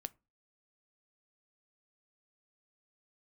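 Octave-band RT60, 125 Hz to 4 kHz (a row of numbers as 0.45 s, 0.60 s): 0.40 s, 0.35 s, 0.30 s, 0.25 s, 0.20 s, 0.15 s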